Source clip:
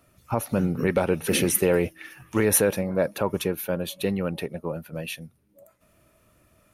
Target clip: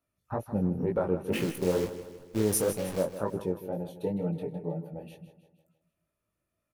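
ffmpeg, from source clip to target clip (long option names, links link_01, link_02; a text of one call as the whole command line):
ffmpeg -i in.wav -filter_complex "[0:a]afwtdn=0.0398,asplit=3[link_01][link_02][link_03];[link_01]afade=type=out:start_time=1.32:duration=0.02[link_04];[link_02]acrusher=bits=6:dc=4:mix=0:aa=0.000001,afade=type=in:start_time=1.32:duration=0.02,afade=type=out:start_time=3.02:duration=0.02[link_05];[link_03]afade=type=in:start_time=3.02:duration=0.02[link_06];[link_04][link_05][link_06]amix=inputs=3:normalize=0,asettb=1/sr,asplit=3[link_07][link_08][link_09];[link_07]atrim=end=3.904[link_10];[link_08]atrim=start=3.9:end=4.92,asetpts=PTS-STARTPTS,afade=type=in:duration=0.004:curve=qsin,afade=type=out:start_time=1.016:duration=0.004:curve=qsin,aecho=1:1:6.7:0.75,atrim=end_sample=44982[link_11];[link_09]atrim=start=4.916[link_12];[link_10][link_11]acrossfade=duration=0.004:curve1=hsin:curve2=qsin[link_13];[link_13][link_12]acrossfade=duration=0.004:curve1=qsin:curve2=hsin,flanger=delay=17.5:depth=5:speed=2.1,aecho=1:1:158|316|474|632|790:0.237|0.119|0.0593|0.0296|0.0148,volume=-3dB" out.wav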